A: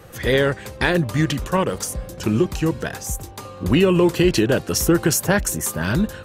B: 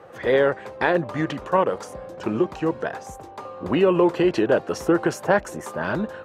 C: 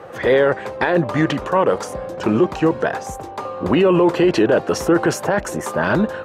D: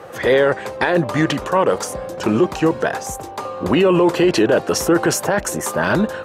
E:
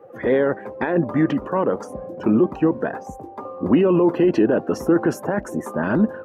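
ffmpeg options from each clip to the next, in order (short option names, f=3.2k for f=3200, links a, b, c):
-af "bandpass=f=740:t=q:w=0.99:csg=0,volume=3.5dB"
-af "alimiter=limit=-15.5dB:level=0:latency=1:release=10,volume=8.5dB"
-af "highshelf=f=4.7k:g=10.5"
-af "afftdn=nr=13:nf=-30,equalizer=f=250:t=o:w=1:g=10,equalizer=f=4k:t=o:w=1:g=-9,equalizer=f=8k:t=o:w=1:g=-11,volume=-6.5dB"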